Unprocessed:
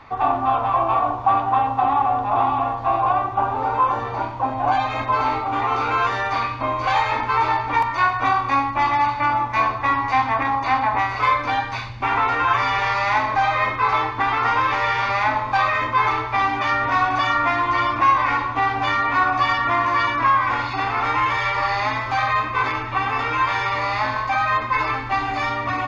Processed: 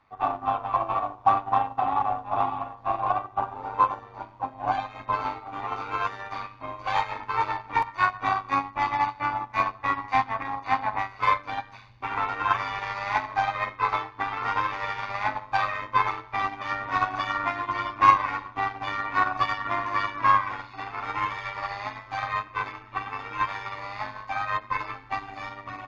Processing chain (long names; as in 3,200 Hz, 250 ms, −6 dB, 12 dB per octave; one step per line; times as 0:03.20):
harmonic generator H 8 −42 dB, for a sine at −5.5 dBFS
amplitude modulation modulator 100 Hz, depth 35%
expander for the loud parts 2.5 to 1, over −29 dBFS
level +3.5 dB